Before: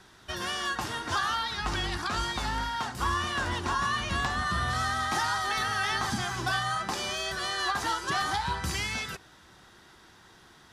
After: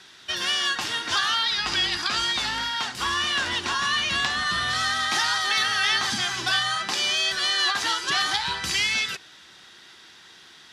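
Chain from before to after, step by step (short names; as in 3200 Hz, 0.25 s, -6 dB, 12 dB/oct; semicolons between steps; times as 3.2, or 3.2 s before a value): weighting filter D; 1.47–2.17 whine 4900 Hz -34 dBFS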